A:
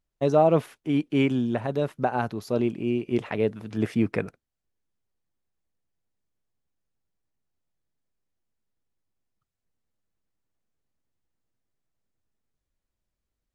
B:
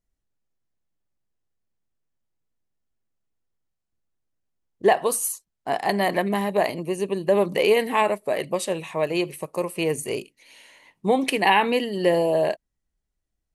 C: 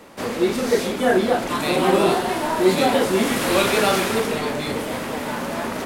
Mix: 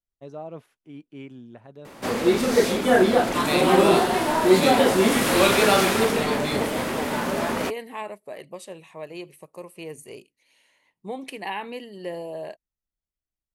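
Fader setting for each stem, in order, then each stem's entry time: -18.0, -13.0, +0.5 dB; 0.00, 0.00, 1.85 s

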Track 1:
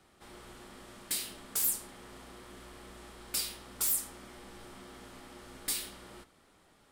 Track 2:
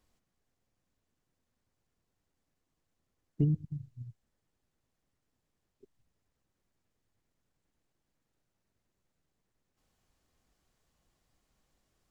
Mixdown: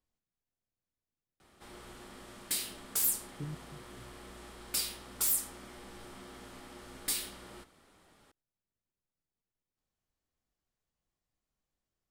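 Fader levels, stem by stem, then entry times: +0.5, -13.5 dB; 1.40, 0.00 s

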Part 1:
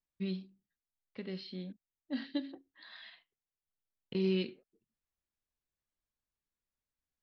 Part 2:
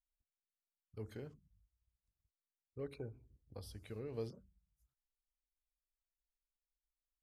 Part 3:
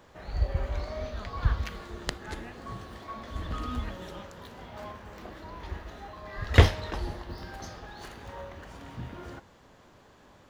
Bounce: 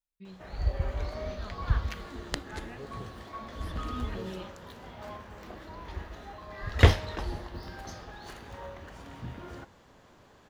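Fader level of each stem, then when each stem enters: -11.5, -2.0, -1.0 dB; 0.00, 0.00, 0.25 s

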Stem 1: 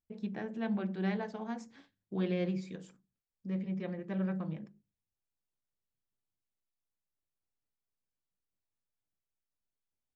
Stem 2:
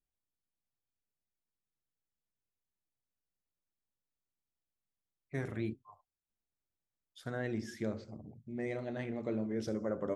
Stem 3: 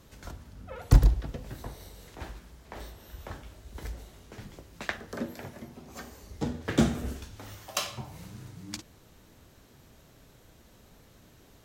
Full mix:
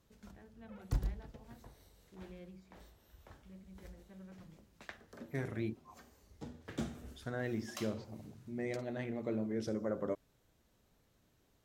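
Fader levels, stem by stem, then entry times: -19.5, -1.0, -16.0 dB; 0.00, 0.00, 0.00 s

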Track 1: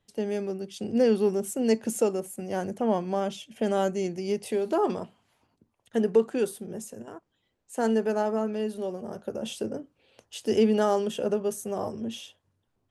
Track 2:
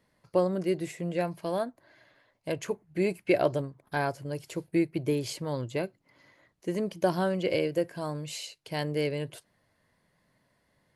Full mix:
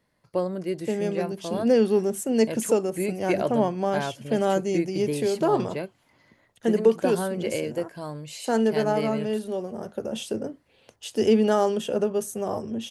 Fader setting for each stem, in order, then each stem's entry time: +2.5, -1.0 dB; 0.70, 0.00 s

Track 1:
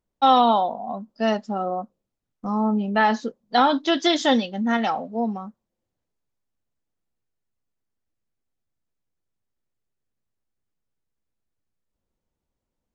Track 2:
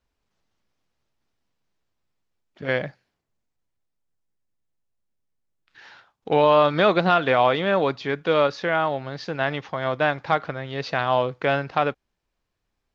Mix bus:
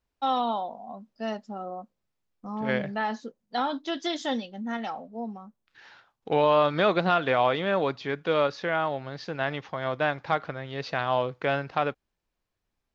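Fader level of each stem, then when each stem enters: -10.0, -4.5 dB; 0.00, 0.00 s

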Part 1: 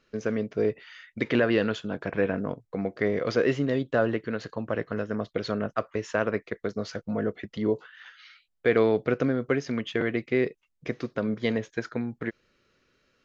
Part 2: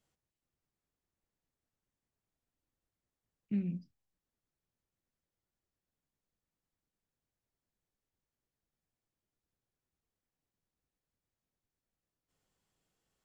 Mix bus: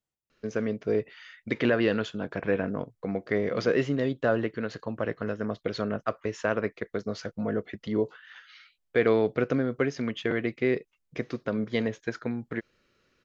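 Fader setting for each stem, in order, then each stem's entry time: -1.0, -9.0 dB; 0.30, 0.00 s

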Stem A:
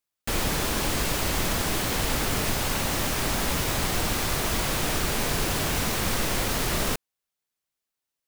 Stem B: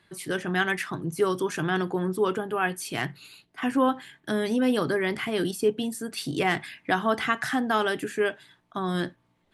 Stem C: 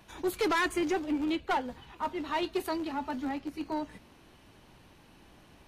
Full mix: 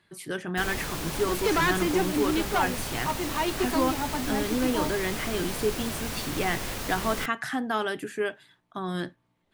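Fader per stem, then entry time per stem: -7.5, -3.5, +3.0 dB; 0.30, 0.00, 1.05 s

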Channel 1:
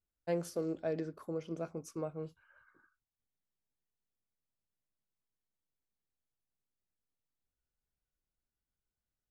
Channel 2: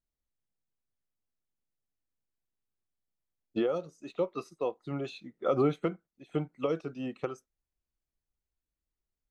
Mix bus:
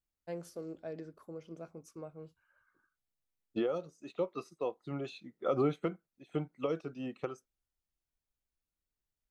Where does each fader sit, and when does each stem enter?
-7.0, -3.5 dB; 0.00, 0.00 s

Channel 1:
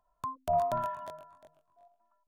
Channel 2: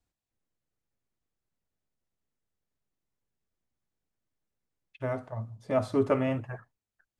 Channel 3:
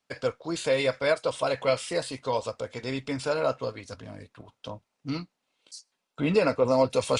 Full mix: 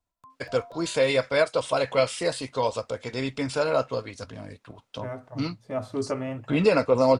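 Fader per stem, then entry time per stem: -15.5, -3.5, +2.5 dB; 0.00, 0.00, 0.30 s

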